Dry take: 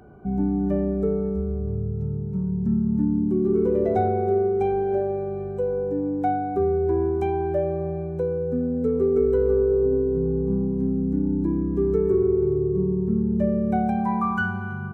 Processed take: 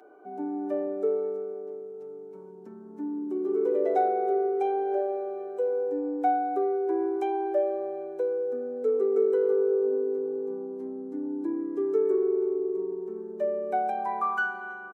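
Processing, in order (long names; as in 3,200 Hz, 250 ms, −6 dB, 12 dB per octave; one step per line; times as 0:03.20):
Butterworth high-pass 320 Hz 36 dB per octave
comb filter 6.6 ms, depth 32%
level −2 dB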